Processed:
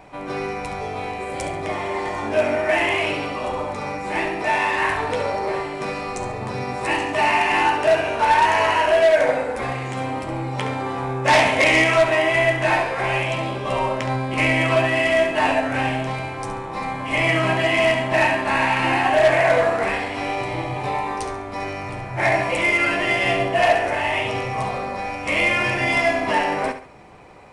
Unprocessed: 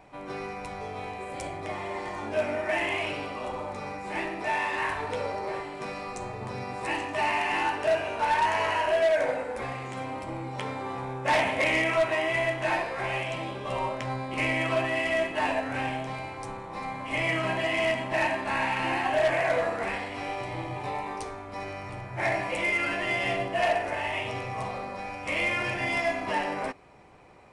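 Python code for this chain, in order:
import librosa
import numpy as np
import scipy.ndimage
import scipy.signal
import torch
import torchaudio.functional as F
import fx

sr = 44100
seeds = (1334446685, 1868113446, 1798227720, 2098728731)

y = fx.peak_eq(x, sr, hz=5700.0, db=4.5, octaves=1.5, at=(11.24, 12.01))
y = fx.echo_feedback(y, sr, ms=69, feedback_pct=32, wet_db=-10.5)
y = y * 10.0 ** (8.0 / 20.0)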